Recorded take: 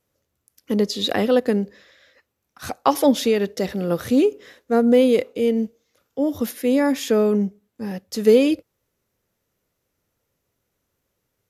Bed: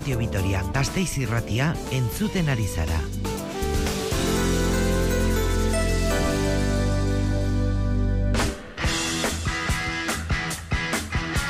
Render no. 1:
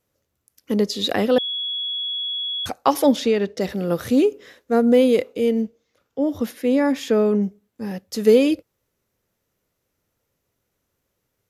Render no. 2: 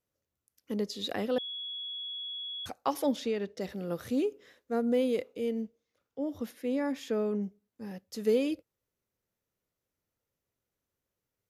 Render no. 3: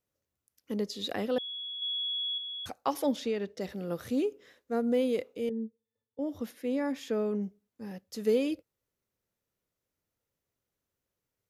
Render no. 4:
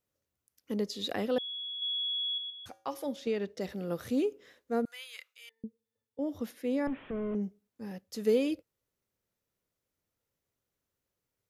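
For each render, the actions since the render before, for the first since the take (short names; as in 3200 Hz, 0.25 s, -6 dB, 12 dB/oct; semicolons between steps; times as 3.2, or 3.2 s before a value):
1.38–2.66 bleep 3360 Hz -23.5 dBFS; 3.16–3.61 air absorption 59 m; 5.62–7.43 high shelf 6400 Hz -10 dB
gain -12.5 dB
1.82–2.38 gain +6 dB; 5.49–6.19 octave resonator A, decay 0.1 s
2.5–3.27 resonator 110 Hz, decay 0.44 s, harmonics odd; 4.85–5.64 HPF 1400 Hz 24 dB/oct; 6.87–7.35 delta modulation 16 kbps, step -50 dBFS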